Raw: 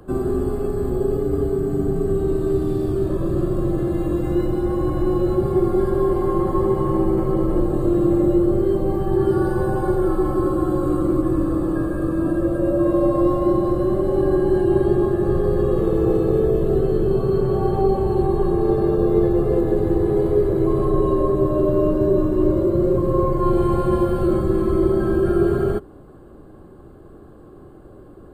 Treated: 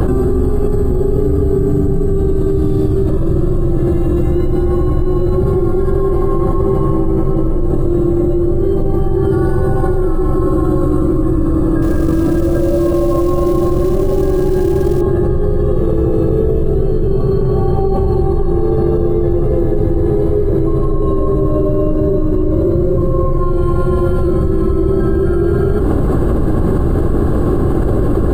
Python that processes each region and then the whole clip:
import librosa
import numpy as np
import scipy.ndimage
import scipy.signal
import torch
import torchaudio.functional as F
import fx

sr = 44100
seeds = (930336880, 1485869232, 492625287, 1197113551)

y = fx.chain(x, sr, fx.hum_notches(base_hz=60, count=3),
    fx.quant_companded(bits=6), at=(11.82, 15.01))
y = fx.low_shelf(y, sr, hz=160.0, db=10.0)
y = fx.env_flatten(y, sr, amount_pct=100)
y = y * librosa.db_to_amplitude(-4.5)